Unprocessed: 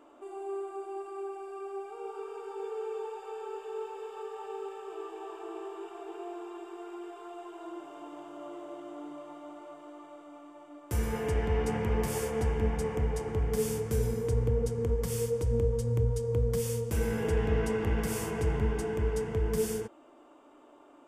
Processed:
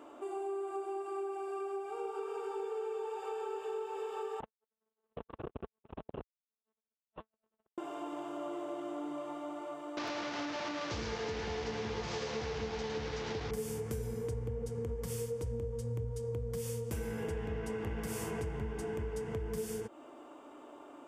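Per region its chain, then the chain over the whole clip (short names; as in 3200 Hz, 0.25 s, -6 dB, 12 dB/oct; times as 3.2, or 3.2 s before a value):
4.4–7.78 low shelf 290 Hz +7.5 dB + monotone LPC vocoder at 8 kHz 220 Hz + core saturation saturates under 360 Hz
9.97–13.51 delta modulation 32 kbps, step -31 dBFS + HPF 180 Hz 6 dB/oct + echo 0.107 s -5.5 dB
whole clip: HPF 53 Hz; compressor, threshold -40 dBFS; gain +4.5 dB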